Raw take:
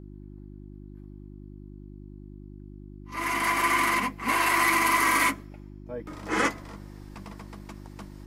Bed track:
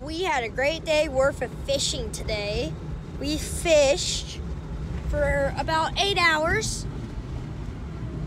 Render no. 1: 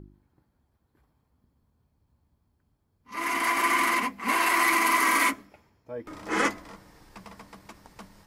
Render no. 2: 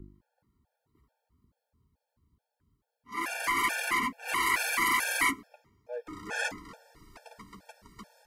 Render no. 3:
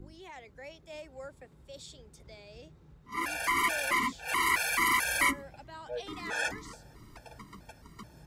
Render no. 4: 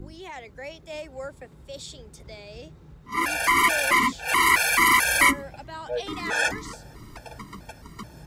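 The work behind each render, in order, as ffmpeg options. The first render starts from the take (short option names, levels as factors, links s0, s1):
-af "bandreject=f=50:t=h:w=4,bandreject=f=100:t=h:w=4,bandreject=f=150:t=h:w=4,bandreject=f=200:t=h:w=4,bandreject=f=250:t=h:w=4,bandreject=f=300:t=h:w=4,bandreject=f=350:t=h:w=4"
-filter_complex "[0:a]acrossover=split=200|1100|6900[s0][s1][s2][s3];[s1]aeval=exprs='0.0299*(abs(mod(val(0)/0.0299+3,4)-2)-1)':c=same[s4];[s0][s4][s2][s3]amix=inputs=4:normalize=0,afftfilt=real='re*gt(sin(2*PI*2.3*pts/sr)*(1-2*mod(floor(b*sr/1024/460),2)),0)':imag='im*gt(sin(2*PI*2.3*pts/sr)*(1-2*mod(floor(b*sr/1024/460),2)),0)':win_size=1024:overlap=0.75"
-filter_complex "[1:a]volume=0.0708[s0];[0:a][s0]amix=inputs=2:normalize=0"
-af "volume=2.66"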